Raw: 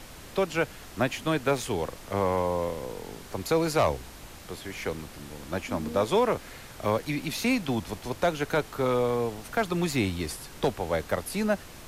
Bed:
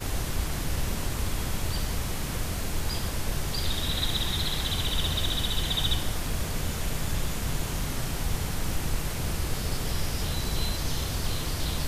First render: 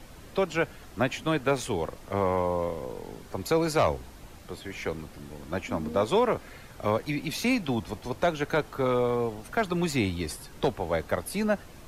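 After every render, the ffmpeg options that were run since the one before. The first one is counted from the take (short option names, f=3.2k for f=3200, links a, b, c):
-af "afftdn=nr=7:nf=-46"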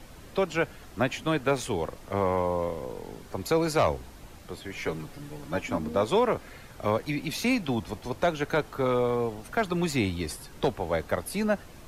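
-filter_complex "[0:a]asettb=1/sr,asplit=3[a][b][c];[a]atrim=end=4.764[d];[b]atrim=start=4.76:end=5.78,asetpts=PTS-STARTPTS,afade=t=in:d=0.004:c=qsin,afade=t=out:st=1.016:d=0.004:c=qsin,aecho=1:1:7:0.65,atrim=end_sample=44982[e];[c]atrim=start=5.776[f];[d][e]acrossfade=d=0.004:c1=hsin:c2=qsin[g];[g][f]acrossfade=d=0.004:c1=qsin:c2=hsin"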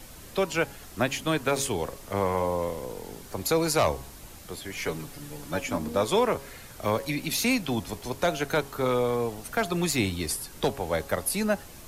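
-af "highshelf=f=5.1k:g=12,bandreject=f=137.8:t=h:w=4,bandreject=f=275.6:t=h:w=4,bandreject=f=413.4:t=h:w=4,bandreject=f=551.2:t=h:w=4,bandreject=f=689:t=h:w=4,bandreject=f=826.8:t=h:w=4,bandreject=f=964.6:t=h:w=4,bandreject=f=1.1024k:t=h:w=4"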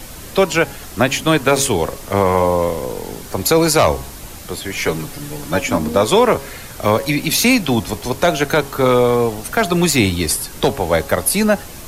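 -af "volume=12dB,alimiter=limit=-3dB:level=0:latency=1"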